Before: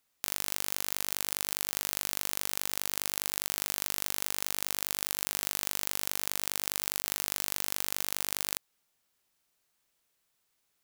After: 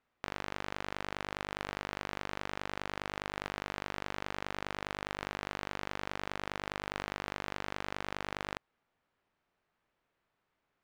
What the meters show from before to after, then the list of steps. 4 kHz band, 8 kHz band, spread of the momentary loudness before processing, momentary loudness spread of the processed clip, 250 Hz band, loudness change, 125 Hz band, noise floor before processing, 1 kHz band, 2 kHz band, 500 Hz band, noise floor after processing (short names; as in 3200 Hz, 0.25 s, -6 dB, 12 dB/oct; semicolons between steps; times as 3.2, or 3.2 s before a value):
-8.5 dB, -21.5 dB, 0 LU, 0 LU, +4.5 dB, -8.5 dB, +4.5 dB, -77 dBFS, +4.0 dB, +0.5 dB, +4.5 dB, -83 dBFS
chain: LPF 1800 Hz 12 dB/oct; gain +4.5 dB